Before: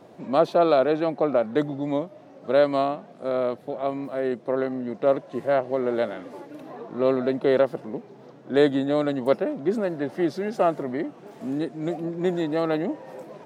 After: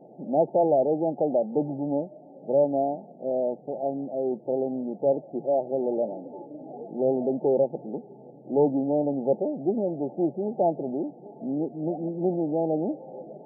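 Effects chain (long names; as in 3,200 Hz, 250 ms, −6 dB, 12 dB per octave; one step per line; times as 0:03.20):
one-sided soft clipper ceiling −18 dBFS
brick-wall band-pass 120–890 Hz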